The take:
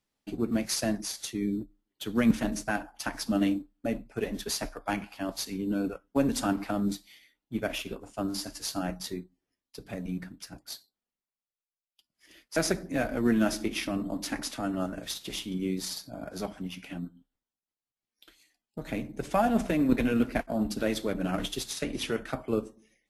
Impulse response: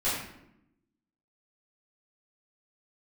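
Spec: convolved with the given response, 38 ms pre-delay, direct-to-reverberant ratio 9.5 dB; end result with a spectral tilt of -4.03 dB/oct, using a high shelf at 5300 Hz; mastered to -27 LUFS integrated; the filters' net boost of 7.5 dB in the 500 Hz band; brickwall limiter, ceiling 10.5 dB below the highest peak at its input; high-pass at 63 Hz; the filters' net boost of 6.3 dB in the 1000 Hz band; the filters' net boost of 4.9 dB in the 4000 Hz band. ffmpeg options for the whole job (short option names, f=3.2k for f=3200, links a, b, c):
-filter_complex "[0:a]highpass=63,equalizer=f=500:t=o:g=8,equalizer=f=1k:t=o:g=5,equalizer=f=4k:t=o:g=3.5,highshelf=f=5.3k:g=5,alimiter=limit=-16.5dB:level=0:latency=1,asplit=2[a][b];[1:a]atrim=start_sample=2205,adelay=38[c];[b][c]afir=irnorm=-1:irlink=0,volume=-19.5dB[d];[a][d]amix=inputs=2:normalize=0,volume=1.5dB"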